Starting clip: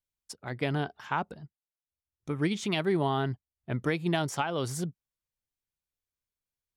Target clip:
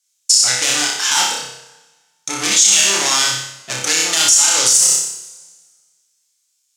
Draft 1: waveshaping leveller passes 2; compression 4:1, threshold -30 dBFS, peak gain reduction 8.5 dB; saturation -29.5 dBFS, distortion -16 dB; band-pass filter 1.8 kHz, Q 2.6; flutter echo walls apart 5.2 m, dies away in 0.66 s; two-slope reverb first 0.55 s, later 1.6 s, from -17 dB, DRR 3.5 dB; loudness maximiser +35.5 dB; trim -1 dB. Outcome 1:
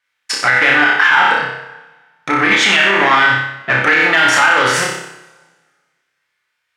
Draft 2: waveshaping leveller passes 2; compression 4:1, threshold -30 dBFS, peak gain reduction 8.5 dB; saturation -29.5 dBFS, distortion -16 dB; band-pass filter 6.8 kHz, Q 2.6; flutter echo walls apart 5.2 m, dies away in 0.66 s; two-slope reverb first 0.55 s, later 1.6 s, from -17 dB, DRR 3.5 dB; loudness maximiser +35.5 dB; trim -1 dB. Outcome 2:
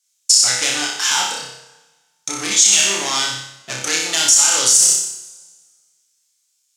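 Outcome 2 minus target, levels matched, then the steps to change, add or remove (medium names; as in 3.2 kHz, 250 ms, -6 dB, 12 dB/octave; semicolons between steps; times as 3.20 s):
compression: peak gain reduction +8.5 dB
remove: compression 4:1, threshold -30 dBFS, peak gain reduction 8.5 dB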